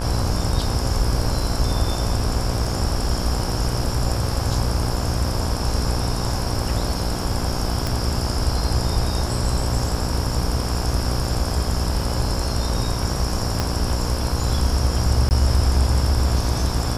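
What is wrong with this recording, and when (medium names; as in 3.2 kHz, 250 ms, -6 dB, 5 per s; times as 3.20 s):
buzz 60 Hz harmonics 28 -26 dBFS
2.65 s: dropout 2.4 ms
7.87 s: pop
13.60 s: pop -8 dBFS
15.29–15.31 s: dropout 19 ms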